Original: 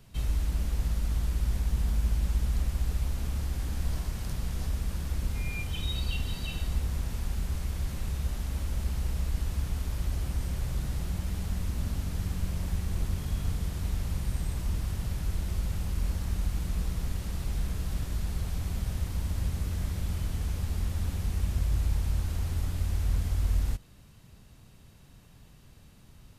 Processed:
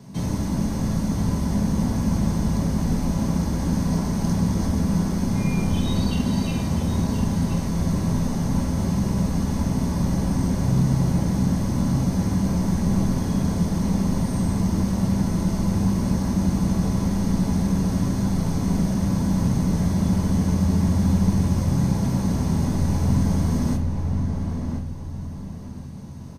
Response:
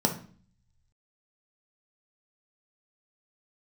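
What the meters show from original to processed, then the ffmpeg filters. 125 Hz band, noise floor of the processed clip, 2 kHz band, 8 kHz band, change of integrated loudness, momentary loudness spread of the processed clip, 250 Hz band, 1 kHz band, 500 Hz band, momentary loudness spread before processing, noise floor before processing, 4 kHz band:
+9.5 dB, -32 dBFS, +5.5 dB, +9.0 dB, +10.0 dB, 4 LU, +21.0 dB, +14.5 dB, +15.5 dB, 4 LU, -54 dBFS, +5.0 dB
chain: -filter_complex "[0:a]asplit=2[a][b];[b]adelay=1029,lowpass=f=2.1k:p=1,volume=-4.5dB,asplit=2[c][d];[d]adelay=1029,lowpass=f=2.1k:p=1,volume=0.31,asplit=2[e][f];[f]adelay=1029,lowpass=f=2.1k:p=1,volume=0.31,asplit=2[g][h];[h]adelay=1029,lowpass=f=2.1k:p=1,volume=0.31[i];[a][c][e][g][i]amix=inputs=5:normalize=0[j];[1:a]atrim=start_sample=2205,asetrate=48510,aresample=44100[k];[j][k]afir=irnorm=-1:irlink=0"

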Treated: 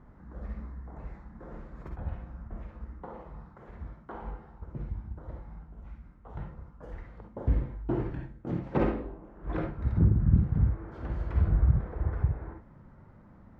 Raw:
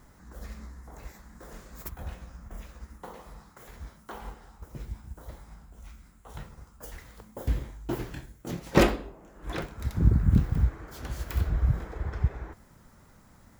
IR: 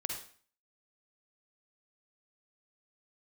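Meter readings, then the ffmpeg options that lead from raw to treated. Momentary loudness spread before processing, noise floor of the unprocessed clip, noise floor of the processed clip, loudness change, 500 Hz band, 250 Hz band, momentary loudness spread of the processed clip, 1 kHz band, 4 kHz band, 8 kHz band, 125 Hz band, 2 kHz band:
23 LU, -57 dBFS, -54 dBFS, -1.5 dB, -4.0 dB, -1.0 dB, 22 LU, -4.0 dB, under -15 dB, under -30 dB, +0.5 dB, -9.5 dB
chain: -filter_complex "[0:a]lowpass=1.4k,equalizer=f=140:t=o:w=2.6:g=4,alimiter=limit=-13.5dB:level=0:latency=1:release=323[a];[1:a]atrim=start_sample=2205,atrim=end_sample=3528[b];[a][b]afir=irnorm=-1:irlink=0"

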